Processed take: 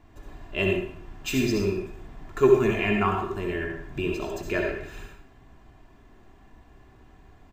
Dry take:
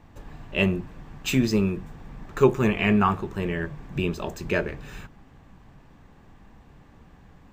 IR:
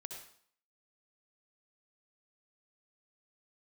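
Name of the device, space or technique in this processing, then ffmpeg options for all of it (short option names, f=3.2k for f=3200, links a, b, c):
microphone above a desk: -filter_complex "[0:a]aecho=1:1:2.9:0.53[a];[1:a]atrim=start_sample=2205[b];[a][b]afir=irnorm=-1:irlink=0,volume=1.5dB"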